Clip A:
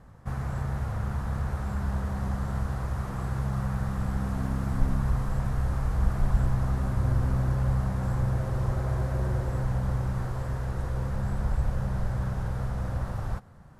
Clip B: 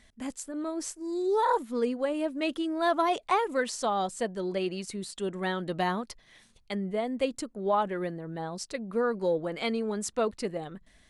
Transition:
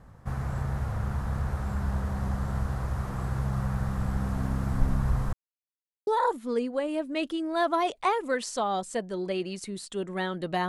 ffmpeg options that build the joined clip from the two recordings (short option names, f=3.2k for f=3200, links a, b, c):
-filter_complex "[0:a]apad=whole_dur=10.68,atrim=end=10.68,asplit=2[a][b];[a]atrim=end=5.33,asetpts=PTS-STARTPTS,afade=t=out:st=5.326:d=0.004:c=hsin[c];[b]atrim=start=5.33:end=6.07,asetpts=PTS-STARTPTS,volume=0[d];[1:a]atrim=start=1.33:end=5.94,asetpts=PTS-STARTPTS,afade=t=in:d=0.004:c=hsin[e];[c][d][e]concat=n=3:v=0:a=1"